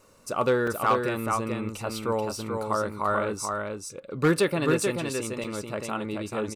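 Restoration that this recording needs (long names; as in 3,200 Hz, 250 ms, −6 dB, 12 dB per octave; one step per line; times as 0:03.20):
clipped peaks rebuilt −14.5 dBFS
repair the gap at 0:00.67/0:05.44, 4.1 ms
echo removal 434 ms −4.5 dB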